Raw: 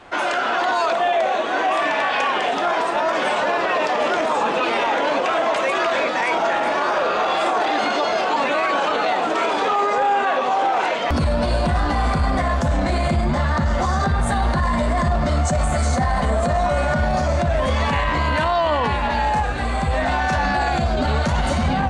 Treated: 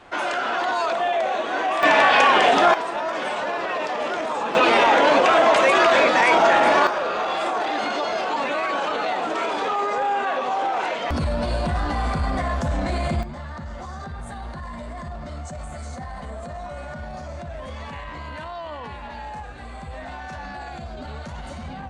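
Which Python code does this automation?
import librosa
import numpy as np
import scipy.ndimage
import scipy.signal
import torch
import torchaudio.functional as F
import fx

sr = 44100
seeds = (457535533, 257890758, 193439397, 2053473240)

y = fx.gain(x, sr, db=fx.steps((0.0, -3.5), (1.83, 5.0), (2.74, -6.0), (4.55, 4.0), (6.87, -4.5), (13.23, -15.0)))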